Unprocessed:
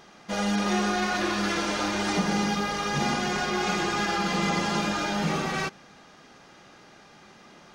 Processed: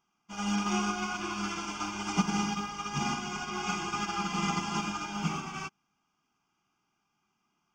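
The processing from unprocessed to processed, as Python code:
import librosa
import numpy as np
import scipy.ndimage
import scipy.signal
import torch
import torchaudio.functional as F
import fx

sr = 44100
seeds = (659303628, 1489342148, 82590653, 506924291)

y = fx.low_shelf(x, sr, hz=190.0, db=-3.5)
y = fx.fixed_phaser(y, sr, hz=2700.0, stages=8)
y = fx.upward_expand(y, sr, threshold_db=-43.0, expansion=2.5)
y = y * librosa.db_to_amplitude(4.0)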